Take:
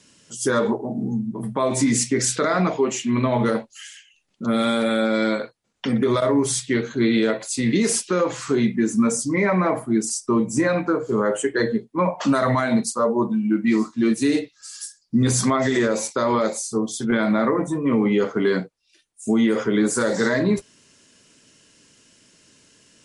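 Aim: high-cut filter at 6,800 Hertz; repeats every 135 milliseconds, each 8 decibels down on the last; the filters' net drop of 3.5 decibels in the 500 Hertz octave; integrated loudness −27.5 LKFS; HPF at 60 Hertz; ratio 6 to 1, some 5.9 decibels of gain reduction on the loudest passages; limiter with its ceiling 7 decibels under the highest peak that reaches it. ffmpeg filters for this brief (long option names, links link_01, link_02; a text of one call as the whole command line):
ffmpeg -i in.wav -af "highpass=60,lowpass=6800,equalizer=frequency=500:width_type=o:gain=-4.5,acompressor=threshold=-22dB:ratio=6,alimiter=limit=-20dB:level=0:latency=1,aecho=1:1:135|270|405|540|675:0.398|0.159|0.0637|0.0255|0.0102,volume=1dB" out.wav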